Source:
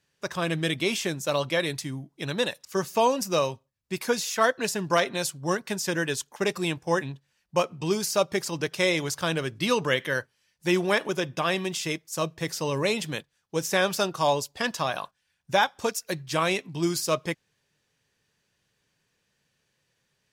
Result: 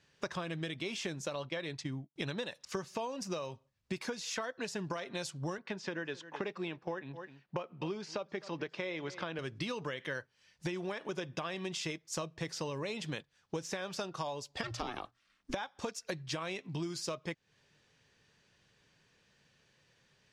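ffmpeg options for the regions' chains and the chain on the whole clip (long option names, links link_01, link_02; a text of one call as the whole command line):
ffmpeg -i in.wav -filter_complex "[0:a]asettb=1/sr,asplit=3[link_01][link_02][link_03];[link_01]atrim=end=1.354[link_04];[link_02]atrim=start=1.35:end=2.16,asetpts=PTS-STARTPTS,afade=type=in:duration=0.004:curve=qsin,afade=type=out:start_time=0.806:duration=0.004:curve=qsin,agate=range=-33dB:threshold=-33dB:ratio=3:release=100:detection=peak,adynamicsmooth=sensitivity=2:basefreq=6900[link_05];[link_03]atrim=start=2.156[link_06];[link_04][link_05]acrossfade=duration=0.004:curve1=hsin:curve2=qsin[link_07];[link_07][link_06]acrossfade=duration=0.004:curve1=qsin:curve2=hsin,asettb=1/sr,asplit=3[link_08][link_09][link_10];[link_08]atrim=end=5.584[link_11];[link_09]atrim=start=5.58:end=9.39,asetpts=PTS-STARTPTS,afade=type=in:duration=0.004:curve=qsin,afade=type=out:start_time=3.806:duration=0.004:curve=qsin,highpass=180,lowpass=3200,aecho=1:1:259:0.0668,atrim=end_sample=168021[link_12];[link_10]atrim=start=9.386[link_13];[link_11][link_12]acrossfade=duration=0.004:curve1=hsin:curve2=qsin[link_14];[link_14][link_13]acrossfade=duration=0.004:curve1=qsin:curve2=hsin,asettb=1/sr,asplit=3[link_15][link_16][link_17];[link_15]atrim=end=14.634[link_18];[link_16]atrim=start=14.63:end=15.54,asetpts=PTS-STARTPTS,afade=type=in:duration=0.004:curve=qsin,afade=type=out:start_time=0.906:duration=0.004:curve=qsin,aeval=exprs='val(0)*sin(2*PI*240*n/s)':channel_layout=same,afreqshift=-120[link_19];[link_17]atrim=start=15.536[link_20];[link_18][link_19]acrossfade=duration=0.004:curve1=hsin:curve2=qsin[link_21];[link_21][link_20]acrossfade=duration=0.004:curve1=qsin:curve2=hsin,lowpass=6000,alimiter=limit=-17dB:level=0:latency=1:release=270,acompressor=threshold=-40dB:ratio=12,volume=5dB" out.wav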